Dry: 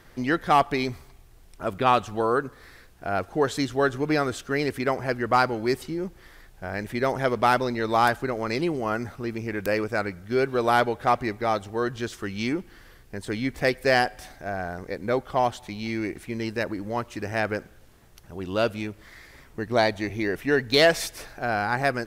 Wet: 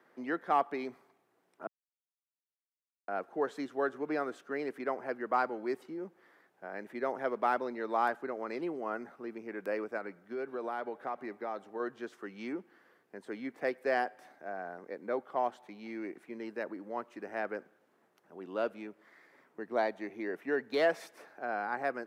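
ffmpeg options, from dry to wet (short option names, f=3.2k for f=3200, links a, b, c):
-filter_complex "[0:a]asettb=1/sr,asplit=3[a][b][c];[a]atrim=end=9.974[d];[b]atrim=start=9.97:end=11.8,asetpts=PTS-STARTPTS,afade=t=in:d=0.004:c=qsin,afade=t=out:st=1.826:d=0.004:c=qsin,acompressor=threshold=-24dB:ratio=4:attack=3.2:release=140:knee=1:detection=peak[e];[c]atrim=start=11.796[f];[d][e]acrossfade=d=0.004:c1=hsin:c2=qsin[g];[g][f]acrossfade=d=0.004:c1=qsin:c2=hsin,asplit=3[h][i][j];[h]atrim=end=1.67,asetpts=PTS-STARTPTS,afade=t=out:st=1.666:d=0.004:c=hsin[k];[i]atrim=start=1.67:end=3.08,asetpts=PTS-STARTPTS,volume=0[l];[j]atrim=start=3.08,asetpts=PTS-STARTPTS,afade=t=in:d=0.004:c=hsin[m];[k][l][m]concat=n=3:v=0:a=1,highpass=f=170:w=0.5412,highpass=f=170:w=1.3066,acrossover=split=240 2000:gain=0.251 1 0.2[n][o][p];[n][o][p]amix=inputs=3:normalize=0,volume=-8.5dB"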